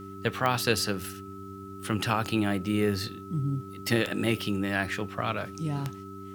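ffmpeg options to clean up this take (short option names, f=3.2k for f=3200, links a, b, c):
-af "adeclick=t=4,bandreject=f=97.5:t=h:w=4,bandreject=f=195:t=h:w=4,bandreject=f=292.5:t=h:w=4,bandreject=f=390:t=h:w=4,bandreject=f=1.3k:w=30,agate=range=-21dB:threshold=-34dB"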